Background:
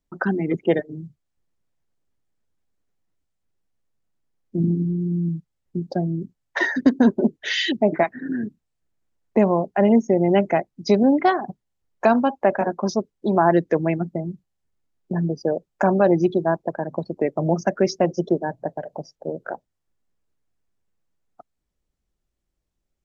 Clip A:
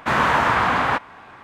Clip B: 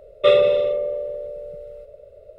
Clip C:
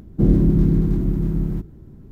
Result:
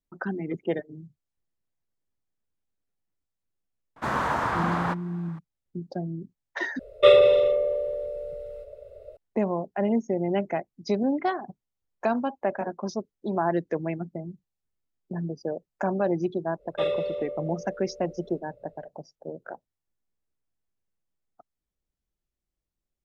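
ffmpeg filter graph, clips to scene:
-filter_complex "[2:a]asplit=2[a][b];[0:a]volume=-8.5dB[c];[1:a]equalizer=f=2.6k:w=1.1:g=-8.5[d];[a]equalizer=f=190:w=2.6:g=-12[e];[c]asplit=2[f][g];[f]atrim=end=6.794[h];[e]atrim=end=2.38[i];[g]atrim=start=9.166[j];[d]atrim=end=1.43,asetpts=PTS-STARTPTS,volume=-6.5dB,afade=t=in:d=0.004:c=hsin,afade=t=out:st=1.426:d=0.004:c=hsin,adelay=3960[k];[b]atrim=end=2.38,asetpts=PTS-STARTPTS,volume=-12dB,afade=t=in:d=0.1,afade=t=out:st=2.28:d=0.1,adelay=16540[l];[h][i]acrossfade=d=0.004:c1=hsin:c2=hsin[m];[m][j]acrossfade=d=0.004:c1=hsin:c2=hsin[n];[n][k][l]amix=inputs=3:normalize=0"

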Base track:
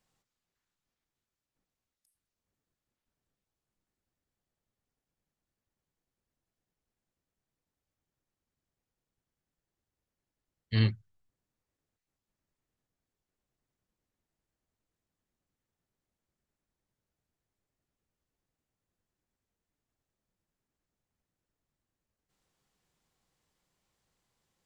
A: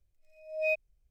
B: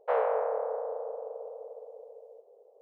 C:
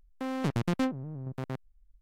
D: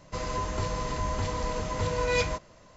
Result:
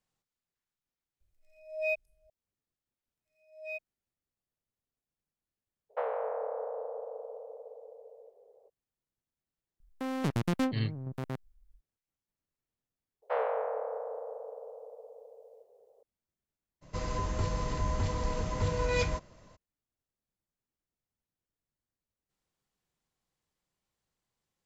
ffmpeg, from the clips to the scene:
-filter_complex "[1:a]asplit=2[a][b];[2:a]asplit=2[c][d];[0:a]volume=-7dB[e];[a]aecho=1:1:519:0.0668[f];[b]highpass=620[g];[c]acompressor=threshold=-30dB:ratio=6:attack=49:release=191:knee=6:detection=peak[h];[3:a]highshelf=f=9k:g=5[i];[d]highshelf=f=2.3k:g=9[j];[4:a]lowshelf=f=290:g=6[k];[f]atrim=end=1.1,asetpts=PTS-STARTPTS,volume=-2dB,afade=t=in:d=0.004:c=hsin,afade=t=out:st=1.096:d=0.004:c=hsin,adelay=1200[l];[g]atrim=end=1.1,asetpts=PTS-STARTPTS,volume=-9.5dB,afade=t=in:d=0.004:c=hsin,afade=t=out:st=1.096:d=0.004:c=hsin,adelay=3030[m];[h]atrim=end=2.81,asetpts=PTS-STARTPTS,volume=-2.5dB,afade=t=in:d=0.02,afade=t=out:st=2.79:d=0.02,adelay=259749S[n];[i]atrim=end=2.01,asetpts=PTS-STARTPTS,volume=-1dB,afade=t=in:d=0.004:c=hsin,afade=t=out:st=2.006:d=0.004:c=hsin,adelay=9800[o];[j]atrim=end=2.81,asetpts=PTS-STARTPTS,volume=-4.5dB,afade=t=in:d=0.004:c=hsin,afade=t=out:st=2.806:d=0.004:c=hsin,adelay=13220[p];[k]atrim=end=2.76,asetpts=PTS-STARTPTS,volume=-5dB,afade=t=in:d=0.02,afade=t=out:st=2.74:d=0.02,adelay=16810[q];[e][l][m][n][o][p][q]amix=inputs=7:normalize=0"

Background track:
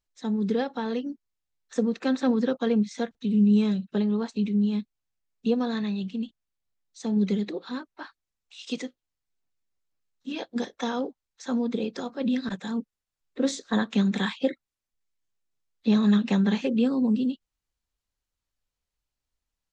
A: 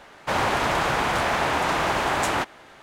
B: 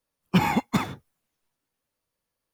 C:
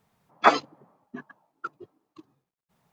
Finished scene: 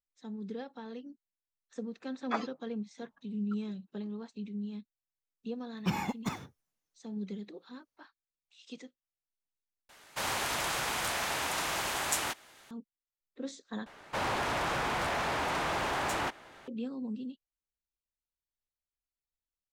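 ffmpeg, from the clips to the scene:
-filter_complex "[1:a]asplit=2[a][b];[0:a]volume=-14.5dB[c];[2:a]equalizer=f=6k:t=o:w=0.47:g=7[d];[a]crystalizer=i=5.5:c=0[e];[b]asoftclip=type=tanh:threshold=-22dB[f];[c]asplit=3[g][h][i];[g]atrim=end=9.894[j];[e]atrim=end=2.82,asetpts=PTS-STARTPTS,volume=-14.5dB[k];[h]atrim=start=12.706:end=13.864[l];[f]atrim=end=2.82,asetpts=PTS-STARTPTS,volume=-5.5dB[m];[i]atrim=start=16.676[n];[3:a]atrim=end=2.92,asetpts=PTS-STARTPTS,volume=-16dB,afade=t=in:d=0.004:c=hsin,afade=t=out:st=2.916:d=0.004:c=hsin,adelay=1870[o];[d]atrim=end=2.53,asetpts=PTS-STARTPTS,volume=-11dB,afade=t=in:d=0.004:c=hsin,afade=t=out:st=2.526:d=0.004:c=hsin,adelay=5520[p];[j][k]acrossfade=d=0.004:c1=hsin:c2=hsin[q];[q][l]acrossfade=d=0.004:c1=hsin:c2=hsin[r];[r][m]acrossfade=d=0.004:c1=hsin:c2=hsin[s];[s][n]acrossfade=d=0.004:c1=hsin:c2=hsin[t];[t][o][p]amix=inputs=3:normalize=0"

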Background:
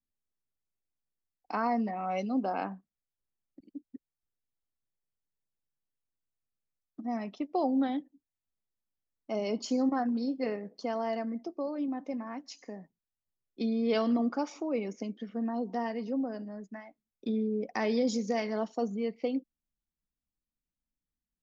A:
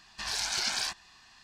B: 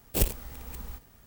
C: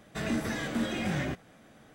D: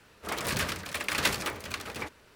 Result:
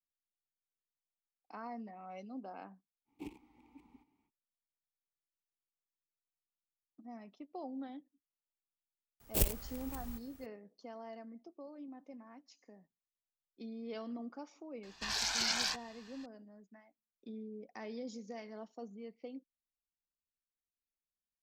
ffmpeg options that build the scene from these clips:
-filter_complex "[2:a]asplit=2[a][b];[0:a]volume=-15.5dB[c];[a]asplit=3[d][e][f];[d]bandpass=f=300:t=q:w=8,volume=0dB[g];[e]bandpass=f=870:t=q:w=8,volume=-6dB[h];[f]bandpass=f=2.24k:t=q:w=8,volume=-9dB[i];[g][h][i]amix=inputs=3:normalize=0[j];[b]highshelf=f=5.1k:g=2.5[k];[1:a]equalizer=f=9.5k:w=4.6:g=-13[l];[j]atrim=end=1.26,asetpts=PTS-STARTPTS,volume=-4.5dB,afade=t=in:d=0.05,afade=t=out:st=1.21:d=0.05,adelay=134505S[m];[k]atrim=end=1.26,asetpts=PTS-STARTPTS,volume=-6dB,afade=t=in:d=0.004:c=hsin,afade=t=out:st=1.256:d=0.004:c=hsin,adelay=9200[n];[l]atrim=end=1.43,asetpts=PTS-STARTPTS,volume=-2.5dB,afade=t=in:d=0.004:c=hsin,afade=t=out:st=1.426:d=0.004:c=hsin,adelay=14830[o];[c][m][n][o]amix=inputs=4:normalize=0"

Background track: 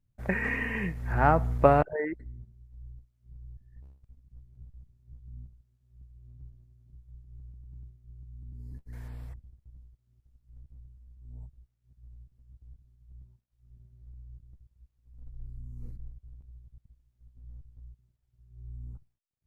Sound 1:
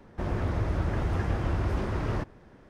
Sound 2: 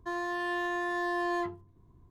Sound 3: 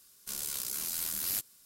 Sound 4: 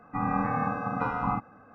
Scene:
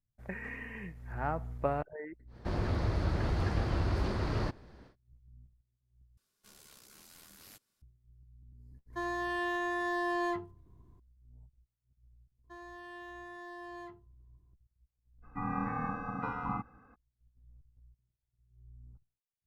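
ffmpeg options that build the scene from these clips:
-filter_complex "[2:a]asplit=2[a][b];[0:a]volume=-12dB[c];[1:a]equalizer=f=4.4k:t=o:w=0.43:g=11.5[d];[3:a]lowpass=f=2.1k:p=1[e];[4:a]equalizer=f=630:w=5:g=-13.5[f];[c]asplit=2[g][h];[g]atrim=end=6.174[i];[e]atrim=end=1.65,asetpts=PTS-STARTPTS,volume=-11dB[j];[h]atrim=start=7.816[k];[d]atrim=end=2.69,asetpts=PTS-STARTPTS,volume=-3dB,afade=t=in:d=0.1,afade=t=out:st=2.59:d=0.1,adelay=2270[l];[a]atrim=end=2.1,asetpts=PTS-STARTPTS,volume=-1.5dB,afade=t=in:d=0.004:c=hsin,afade=t=out:st=2.096:d=0.004:c=hsin,adelay=392490S[m];[b]atrim=end=2.1,asetpts=PTS-STARTPTS,volume=-15dB,afade=t=in:d=0.004:c=hsin,afade=t=out:st=2.096:d=0.004:c=hsin,adelay=12440[n];[f]atrim=end=1.74,asetpts=PTS-STARTPTS,volume=-6.5dB,afade=t=in:d=0.02,afade=t=out:st=1.72:d=0.02,adelay=15220[o];[i][j]acrossfade=d=0.004:c1=hsin:c2=hsin[p];[p][k]acrossfade=d=0.004:c1=hsin:c2=hsin[q];[q][l][m][n][o]amix=inputs=5:normalize=0"

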